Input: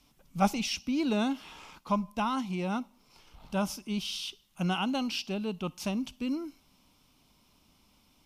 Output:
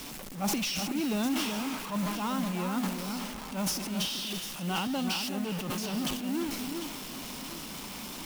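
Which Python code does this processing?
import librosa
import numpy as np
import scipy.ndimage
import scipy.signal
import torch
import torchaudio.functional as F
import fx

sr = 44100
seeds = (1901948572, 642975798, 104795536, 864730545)

p1 = x + 0.5 * 10.0 ** (-30.0 / 20.0) * np.sign(x)
p2 = fx.low_shelf_res(p1, sr, hz=140.0, db=-7.5, q=1.5)
p3 = fx.transient(p2, sr, attack_db=-8, sustain_db=9)
p4 = fx.echo_alternate(p3, sr, ms=376, hz=2300.0, feedback_pct=57, wet_db=-6.0)
p5 = fx.mod_noise(p4, sr, seeds[0], snr_db=17)
p6 = p5 + fx.echo_single(p5, sr, ms=344, db=-15.5, dry=0)
p7 = fx.band_widen(p6, sr, depth_pct=40, at=(4.87, 5.7))
y = F.gain(torch.from_numpy(p7), -5.5).numpy()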